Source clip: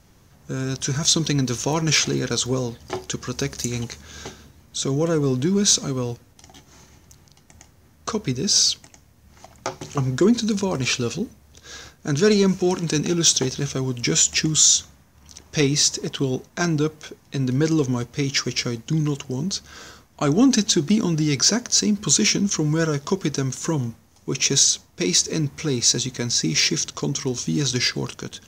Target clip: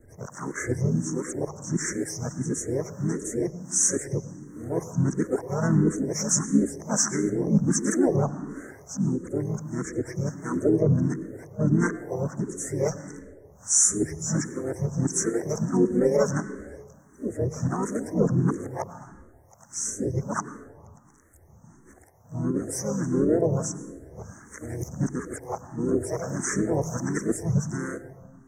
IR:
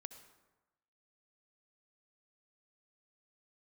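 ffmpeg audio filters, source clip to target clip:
-filter_complex "[0:a]areverse,asplit=4[a][b][c][d];[b]asetrate=33038,aresample=44100,atempo=1.33484,volume=-8dB[e];[c]asetrate=55563,aresample=44100,atempo=0.793701,volume=-10dB[f];[d]asetrate=58866,aresample=44100,atempo=0.749154,volume=-6dB[g];[a][e][f][g]amix=inputs=4:normalize=0,acrossover=split=500[h][i];[h]aeval=exprs='val(0)*(1-0.7/2+0.7/2*cos(2*PI*1.2*n/s))':c=same[j];[i]aeval=exprs='val(0)*(1-0.7/2-0.7/2*cos(2*PI*1.2*n/s))':c=same[k];[j][k]amix=inputs=2:normalize=0,asuperstop=centerf=3400:order=12:qfactor=0.87,asplit=2[l][m];[1:a]atrim=start_sample=2205,asetrate=29988,aresample=44100,highshelf=f=4.5k:g=-11.5[n];[m][n]afir=irnorm=-1:irlink=0,volume=8.5dB[o];[l][o]amix=inputs=2:normalize=0,asplit=2[p][q];[q]afreqshift=1.5[r];[p][r]amix=inputs=2:normalize=1,volume=-7dB"

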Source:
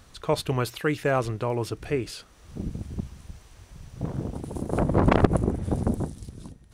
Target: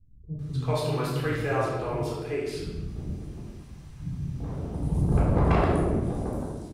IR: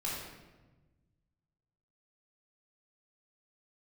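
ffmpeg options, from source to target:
-filter_complex "[0:a]acrossover=split=240[a][b];[b]adelay=390[c];[a][c]amix=inputs=2:normalize=0[d];[1:a]atrim=start_sample=2205[e];[d][e]afir=irnorm=-1:irlink=0,volume=-5.5dB"

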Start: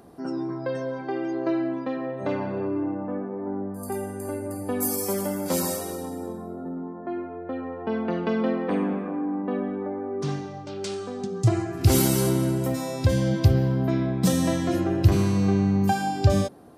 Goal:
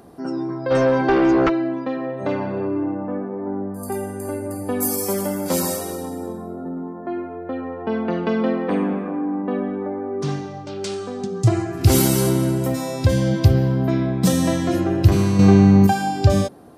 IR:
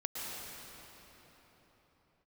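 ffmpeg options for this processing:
-filter_complex "[0:a]asplit=3[a][b][c];[a]afade=t=out:st=0.7:d=0.02[d];[b]aeval=exprs='0.158*sin(PI/2*2.51*val(0)/0.158)':c=same,afade=t=in:st=0.7:d=0.02,afade=t=out:st=1.48:d=0.02[e];[c]afade=t=in:st=1.48:d=0.02[f];[d][e][f]amix=inputs=3:normalize=0,asettb=1/sr,asplit=3[g][h][i];[g]atrim=end=6.774[j];[h]atrim=start=6.77:end=7.55,asetpts=PTS-STARTPTS,afade=t=in:d=0.004:c=qsin,afade=t=out:st=0.776:d=0.004:c=qsin,highshelf=f=8.9k:g=9.5[k];[i]atrim=start=7.546[l];[j][k]acrossfade=d=0.004:c1=hsin:c2=qsin[m];[m][l]acrossfade=d=0.004:c1=qsin:c2=hsin,asettb=1/sr,asplit=3[n][o][p];[n]atrim=end=15.394[q];[o]atrim=start=15.39:end=15.87,asetpts=PTS-STARTPTS,afade=t=in:d=0.004:c=qsin,afade=t=out:st=0.476:d=0.004:c=qsin,acontrast=63[r];[p]atrim=start=15.866[s];[q][r]acrossfade=d=0.004:c1=hsin:c2=qsin[t];[t][s]acrossfade=d=0.004:c1=qsin:c2=hsin,volume=4dB"

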